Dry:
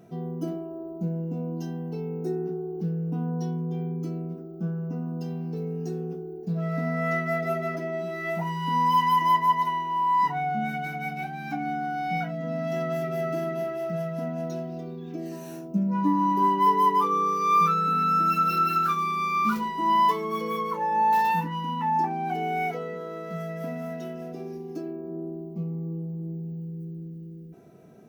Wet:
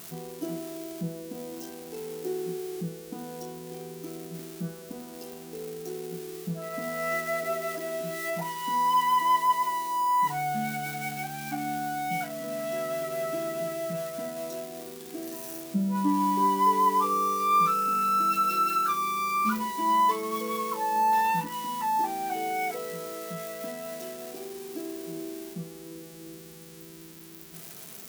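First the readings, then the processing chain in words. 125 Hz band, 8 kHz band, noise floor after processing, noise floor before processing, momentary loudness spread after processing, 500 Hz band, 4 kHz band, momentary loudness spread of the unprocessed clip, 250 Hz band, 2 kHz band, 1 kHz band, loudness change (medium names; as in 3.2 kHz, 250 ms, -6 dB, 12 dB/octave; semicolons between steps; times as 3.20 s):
-9.5 dB, no reading, -45 dBFS, -39 dBFS, 17 LU, -2.0 dB, +1.0 dB, 14 LU, -4.5 dB, -1.5 dB, -2.0 dB, -1.5 dB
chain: zero-crossing glitches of -28 dBFS; de-hum 82.11 Hz, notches 3; trim -2 dB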